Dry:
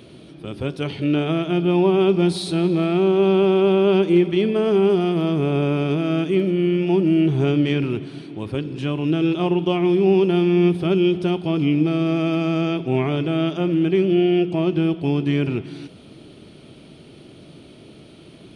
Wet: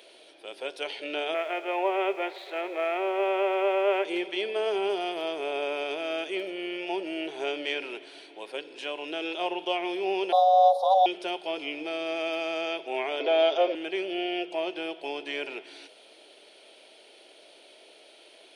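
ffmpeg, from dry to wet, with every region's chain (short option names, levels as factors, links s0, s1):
-filter_complex "[0:a]asettb=1/sr,asplit=3[s0][s1][s2];[s0]atrim=end=1.344[s3];[s1]atrim=start=1.34:end=4.05,asetpts=PTS-STARTPTS,afade=t=in:d=0.004:c=qsin,afade=t=out:st=2.706:d=0.004:c=qsin,highpass=400,equalizer=f=420:t=q:w=4:g=3,equalizer=f=600:t=q:w=4:g=5,equalizer=f=1200:t=q:w=4:g=6,equalizer=f=2000:t=q:w=4:g=9,lowpass=f=2600:w=0.5412,lowpass=f=2600:w=1.3066,aeval=exprs='sgn(val(0))*max(abs(val(0))-0.00266,0)':c=same[s4];[s2]atrim=start=4.046[s5];[s3][s4]acrossfade=d=0.004:c1=hsin:c2=qsin[s6];[s6][s5]acrossfade=d=0.004:c1=qsin:c2=hsin,asettb=1/sr,asplit=3[s7][s8][s9];[s7]atrim=end=10.324[s10];[s8]atrim=start=10.32:end=11.06,asetpts=PTS-STARTPTS,afade=t=in:d=0.004:c=qsin,afade=t=out:st=0.736:d=0.004:c=qsin,equalizer=f=8200:w=1.7:g=-4,afreqshift=380,asuperstop=centerf=2100:order=12:qfactor=0.93[s11];[s9]atrim=start=11.056[s12];[s10][s11]acrossfade=d=0.004:c1=hsin:c2=qsin[s13];[s13][s12]acrossfade=d=0.004:c1=qsin:c2=hsin,asettb=1/sr,asplit=3[s14][s15][s16];[s14]atrim=end=13.204[s17];[s15]atrim=start=13.2:end=13.75,asetpts=PTS-STARTPTS,afade=t=in:d=0.004:c=qsin,afade=t=out:st=0.546:d=0.004:c=qsin,highpass=f=230:w=0.5412,highpass=f=230:w=1.3066,equalizer=f=490:t=q:w=4:g=6,equalizer=f=690:t=q:w=4:g=3,equalizer=f=1700:t=q:w=4:g=-4,equalizer=f=2700:t=q:w=4:g=-5,lowpass=f=5200:w=0.5412,lowpass=f=5200:w=1.3066,acontrast=25,aecho=1:1:7.4:0.47,atrim=end_sample=24255[s18];[s16]atrim=start=13.746[s19];[s17][s18]acrossfade=d=0.004:c1=hsin:c2=qsin[s20];[s20][s19]acrossfade=d=0.004:c1=qsin:c2=hsin,highpass=f=530:w=0.5412,highpass=f=530:w=1.3066,equalizer=f=1200:w=4.3:g=-11,volume=0.891"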